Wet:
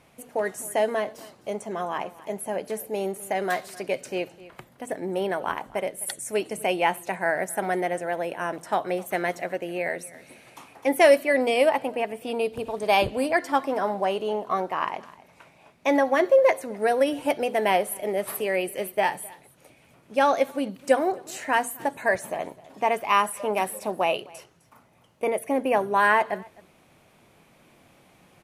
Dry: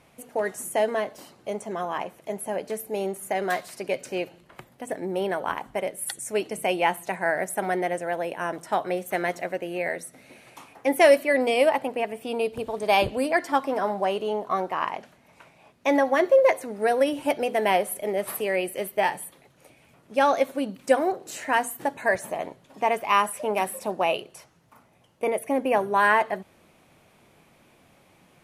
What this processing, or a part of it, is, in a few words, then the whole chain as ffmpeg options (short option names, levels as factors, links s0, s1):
ducked delay: -filter_complex "[0:a]asplit=3[s0][s1][s2];[s1]adelay=258,volume=0.596[s3];[s2]apad=whole_len=1265400[s4];[s3][s4]sidechaincompress=threshold=0.00708:ratio=6:attack=37:release=907[s5];[s0][s5]amix=inputs=2:normalize=0"